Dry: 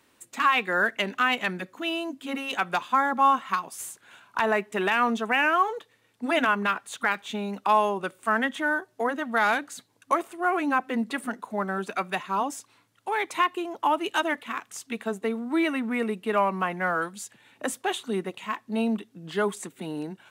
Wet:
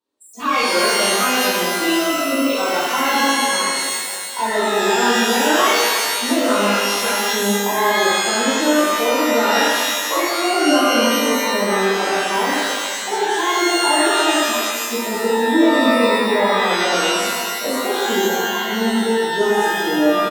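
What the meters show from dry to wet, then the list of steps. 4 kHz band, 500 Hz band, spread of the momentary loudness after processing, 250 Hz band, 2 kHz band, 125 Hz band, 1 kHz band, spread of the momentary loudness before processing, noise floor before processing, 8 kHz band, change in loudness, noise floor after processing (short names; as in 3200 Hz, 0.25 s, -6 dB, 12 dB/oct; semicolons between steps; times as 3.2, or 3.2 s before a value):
+17.0 dB, +12.0 dB, 6 LU, +10.5 dB, +8.0 dB, n/a, +7.0 dB, 12 LU, -65 dBFS, +20.0 dB, +10.0 dB, -25 dBFS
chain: spectral noise reduction 26 dB; graphic EQ 125/250/500/1000/2000/4000 Hz -7/+7/+8/+5/-10/+8 dB; compressor 2:1, threshold -25 dBFS, peak gain reduction 8.5 dB; outdoor echo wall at 240 m, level -21 dB; shimmer reverb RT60 1.6 s, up +12 st, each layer -2 dB, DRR -9.5 dB; gain -3.5 dB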